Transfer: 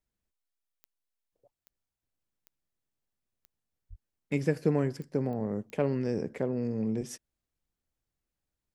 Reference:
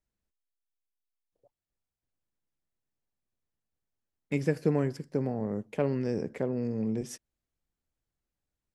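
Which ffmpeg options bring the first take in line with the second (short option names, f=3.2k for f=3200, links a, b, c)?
-filter_complex "[0:a]adeclick=t=4,asplit=3[a][b][c];[a]afade=t=out:st=3.89:d=0.02[d];[b]highpass=f=140:w=0.5412,highpass=f=140:w=1.3066,afade=t=in:st=3.89:d=0.02,afade=t=out:st=4.01:d=0.02[e];[c]afade=t=in:st=4.01:d=0.02[f];[d][e][f]amix=inputs=3:normalize=0"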